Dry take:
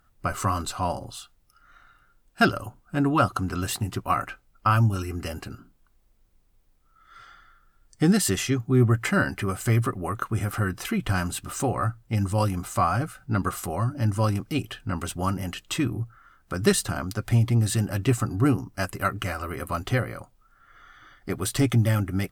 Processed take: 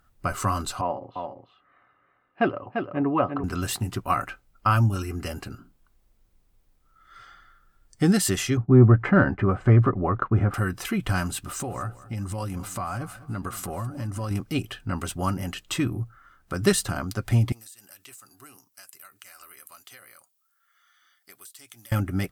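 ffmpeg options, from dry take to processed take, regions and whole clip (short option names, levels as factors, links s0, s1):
-filter_complex "[0:a]asettb=1/sr,asplit=3[s0][s1][s2];[s0]atrim=end=0.814[s3];[s1]atrim=start=0.81:end=3.44,asetpts=PTS-STARTPTS,afade=t=in:d=0.004:c=qsin,afade=t=out:st=2.626:d=0.004:c=qsin,highpass=180,equalizer=f=190:t=q:w=4:g=-6,equalizer=f=500:t=q:w=4:g=3,equalizer=f=1600:t=q:w=4:g=-5,lowpass=f=2300:w=0.5412,lowpass=f=2300:w=1.3066,bandreject=f=1400:w=6.2,aecho=1:1:345:0.501,atrim=end_sample=115983[s4];[s2]atrim=start=3.436[s5];[s3][s4]acrossfade=d=0.004:c1=hsin:c2=qsin[s6];[s6][s5]acrossfade=d=0.004:c1=qsin:c2=hsin,asettb=1/sr,asplit=3[s7][s8][s9];[s7]atrim=end=8.574[s10];[s8]atrim=start=8.57:end=10.54,asetpts=PTS-STARTPTS,afade=t=in:d=0.004:c=qsin,afade=t=out:st=1.966:d=0.004:c=qsin,agate=range=0.0224:threshold=0.0141:ratio=3:release=100:detection=peak,lowpass=1300,acontrast=46[s11];[s9]atrim=start=10.536[s12];[s10][s11]acrossfade=d=0.004:c1=hsin:c2=qsin[s13];[s13][s12]acrossfade=d=0.004:c1=qsin:c2=hsin,asettb=1/sr,asplit=3[s14][s15][s16];[s14]atrim=end=11.394[s17];[s15]atrim=start=11.39:end=14.31,asetpts=PTS-STARTPTS,afade=t=in:d=0.004:c=qsin,afade=t=out:st=2.916:d=0.004:c=qsin,acompressor=threshold=0.0398:ratio=4:attack=3.2:release=140:knee=1:detection=peak,aecho=1:1:209|418|627:0.133|0.0507|0.0193,atrim=end_sample=128772[s18];[s16]atrim=start=14.306[s19];[s17][s18]acrossfade=d=0.004:c1=hsin:c2=qsin[s20];[s20][s19]acrossfade=d=0.004:c1=qsin:c2=hsin,asettb=1/sr,asplit=3[s21][s22][s23];[s21]atrim=end=17.524[s24];[s22]atrim=start=17.52:end=21.92,asetpts=PTS-STARTPTS,afade=t=in:d=0.004:c=qsin,afade=t=out:st=4.396:d=0.004:c=qsin,aderivative,acompressor=threshold=0.00794:ratio=16:attack=3.2:release=140:knee=1:detection=peak[s25];[s23]atrim=start=21.916[s26];[s24][s25]acrossfade=d=0.004:c1=hsin:c2=qsin[s27];[s27][s26]acrossfade=d=0.004:c1=qsin:c2=hsin"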